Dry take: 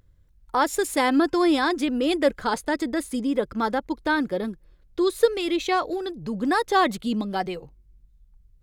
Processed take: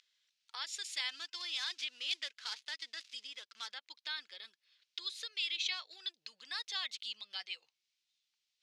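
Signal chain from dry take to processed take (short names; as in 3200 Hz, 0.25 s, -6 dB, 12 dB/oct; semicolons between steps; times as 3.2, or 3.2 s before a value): 1.09–3.68 switching dead time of 0.079 ms; compressor 2:1, threshold -44 dBFS, peak gain reduction 17 dB; Butterworth band-pass 3900 Hz, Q 1.2; gain +10.5 dB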